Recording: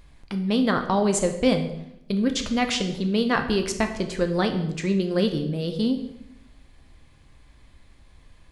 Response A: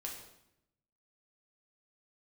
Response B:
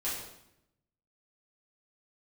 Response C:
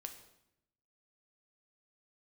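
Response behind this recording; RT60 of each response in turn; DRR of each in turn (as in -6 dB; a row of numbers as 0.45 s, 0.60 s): C; 0.80 s, 0.80 s, 0.80 s; -1.5 dB, -9.5 dB, 5.5 dB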